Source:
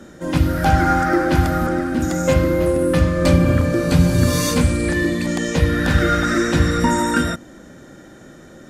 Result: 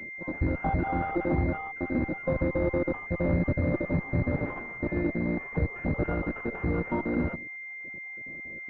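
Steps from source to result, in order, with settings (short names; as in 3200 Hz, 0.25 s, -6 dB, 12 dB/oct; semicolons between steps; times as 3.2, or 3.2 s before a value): random spectral dropouts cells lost 38%; limiter -10.5 dBFS, peak gain reduction 6.5 dB; added harmonics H 4 -17 dB, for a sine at -10.5 dBFS; pulse-width modulation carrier 2100 Hz; gain -7 dB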